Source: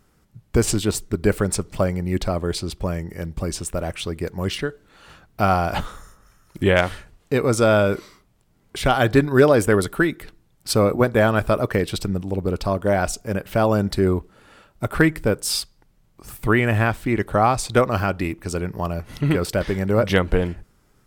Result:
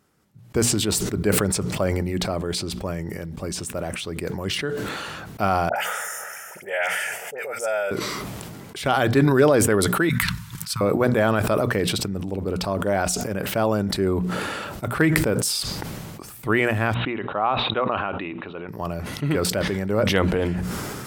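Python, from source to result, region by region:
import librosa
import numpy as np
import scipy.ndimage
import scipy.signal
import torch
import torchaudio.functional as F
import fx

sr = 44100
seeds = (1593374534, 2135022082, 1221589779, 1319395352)

y = fx.chain(x, sr, fx.highpass(hz=650.0, slope=12),
    fx.fixed_phaser(hz=1100.0, stages=6),
    fx.dispersion(late='highs', ms=70.0, hz=1600.0), at=(5.69, 7.91))
y = fx.chain(y, sr, fx.cheby1_bandstop(low_hz=190.0, high_hz=940.0, order=5),
    fx.transient(attack_db=-1, sustain_db=-8), at=(10.09, 10.81))
y = fx.chain(y, sr, fx.cheby_ripple(hz=3900.0, ripple_db=6),
    fx.peak_eq(hz=62.0, db=-13.5, octaves=2.3), at=(16.94, 18.69))
y = scipy.signal.sosfilt(scipy.signal.butter(2, 100.0, 'highpass', fs=sr, output='sos'), y)
y = fx.hum_notches(y, sr, base_hz=60, count=4)
y = fx.sustainer(y, sr, db_per_s=21.0)
y = F.gain(torch.from_numpy(y), -3.5).numpy()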